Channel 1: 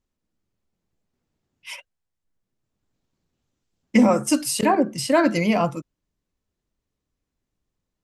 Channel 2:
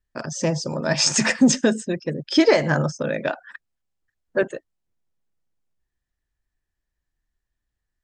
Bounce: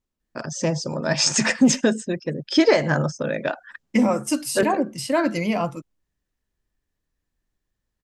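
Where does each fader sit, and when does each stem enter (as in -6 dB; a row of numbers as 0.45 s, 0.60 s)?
-3.0 dB, -0.5 dB; 0.00 s, 0.20 s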